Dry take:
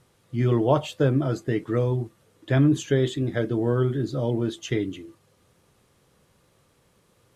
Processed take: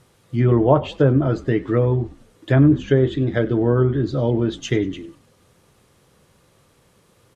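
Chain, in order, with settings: treble ducked by the level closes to 1500 Hz, closed at -17 dBFS; frequency-shifting echo 97 ms, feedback 41%, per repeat -51 Hz, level -20.5 dB; gain +5.5 dB

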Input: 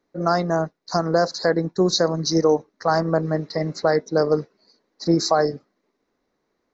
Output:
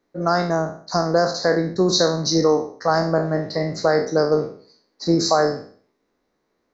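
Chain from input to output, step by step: spectral trails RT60 0.48 s

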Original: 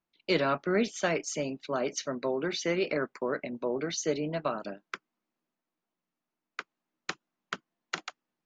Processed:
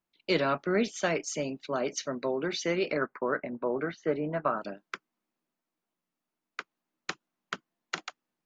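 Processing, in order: 3.01–4.61 synth low-pass 1500 Hz, resonance Q 1.9

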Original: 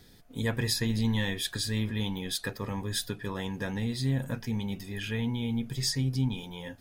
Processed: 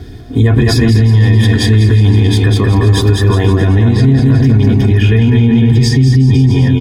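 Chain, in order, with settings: HPF 78 Hz 12 dB/oct; RIAA curve playback; notch 4100 Hz, Q 12; comb 2.8 ms, depth 73%; on a send: bouncing-ball echo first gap 0.2 s, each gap 0.85×, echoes 5; on the sum: maximiser +20.5 dB; gain -1 dB

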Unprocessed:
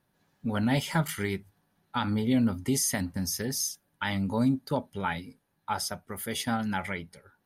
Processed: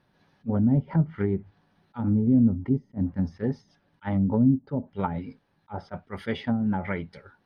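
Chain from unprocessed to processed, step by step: treble ducked by the level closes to 310 Hz, closed at -24.5 dBFS; polynomial smoothing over 15 samples; attack slew limiter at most 490 dB/s; gain +6.5 dB

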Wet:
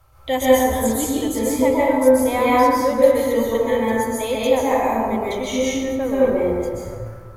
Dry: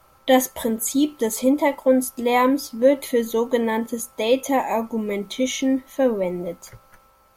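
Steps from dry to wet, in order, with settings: resonant low shelf 140 Hz +10.5 dB, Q 3; plate-style reverb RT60 1.9 s, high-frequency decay 0.4×, pre-delay 0.115 s, DRR -8 dB; gain -5 dB

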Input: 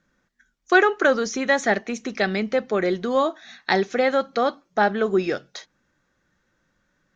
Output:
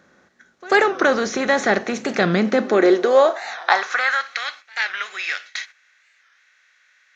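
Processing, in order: per-bin compression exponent 0.6; high-pass sweep 74 Hz -> 2200 Hz, 1.71–4.41; gate -37 dBFS, range -10 dB; on a send: reverse echo 93 ms -23 dB; on the sum: record warp 45 rpm, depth 160 cents; gain -1 dB

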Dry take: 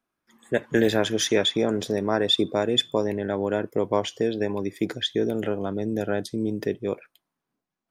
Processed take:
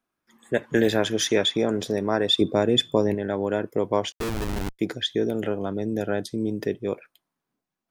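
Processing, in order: 2.41–3.15 low shelf 410 Hz +6 dB; 4.12–4.79 Schmitt trigger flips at -27 dBFS

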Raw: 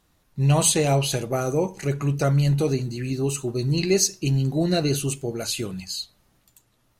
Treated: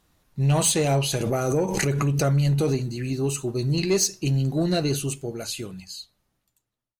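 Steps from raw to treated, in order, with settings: ending faded out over 2.33 s; soft clip -13 dBFS, distortion -20 dB; 1.2–2.77 backwards sustainer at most 31 dB/s

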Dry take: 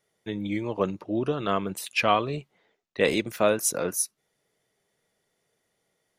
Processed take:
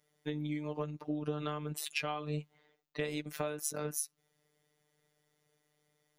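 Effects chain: bell 180 Hz +4.5 dB 1.2 oct; compressor 12:1, threshold -30 dBFS, peak gain reduction 15 dB; robotiser 150 Hz

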